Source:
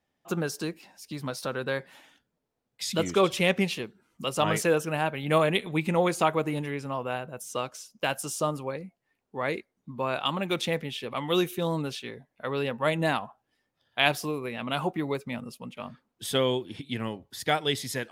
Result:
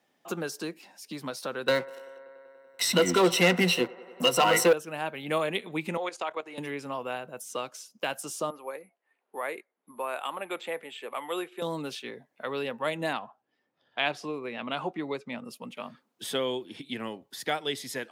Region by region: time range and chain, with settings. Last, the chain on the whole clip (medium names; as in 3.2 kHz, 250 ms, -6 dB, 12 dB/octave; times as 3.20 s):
1.68–4.73 s: rippled EQ curve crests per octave 2, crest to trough 16 dB + waveshaping leveller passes 3 + feedback echo behind a band-pass 96 ms, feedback 72%, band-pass 780 Hz, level -18.5 dB
5.97–6.58 s: band-pass 460–6200 Hz + level held to a coarse grid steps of 14 dB
8.50–11.62 s: de-esser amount 75% + careless resampling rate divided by 4×, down filtered, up zero stuff + band-pass 470–2300 Hz
13.13–15.45 s: low-pass 5.8 kHz + tape noise reduction on one side only decoder only
whole clip: high-pass 220 Hz 12 dB/octave; three bands compressed up and down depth 40%; trim -3.5 dB